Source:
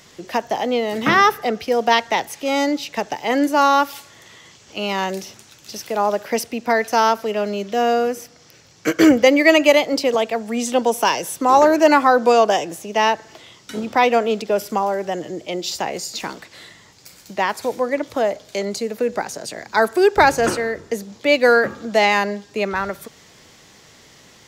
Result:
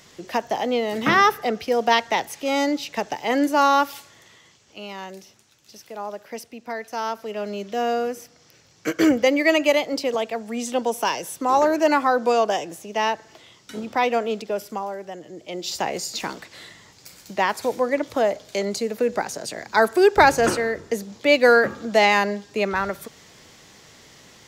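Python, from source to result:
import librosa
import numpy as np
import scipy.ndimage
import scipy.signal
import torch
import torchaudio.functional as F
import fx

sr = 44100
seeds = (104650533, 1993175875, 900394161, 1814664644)

y = fx.gain(x, sr, db=fx.line((3.9, -2.5), (4.94, -13.0), (6.89, -13.0), (7.55, -5.5), (14.34, -5.5), (15.23, -12.0), (15.82, -1.0)))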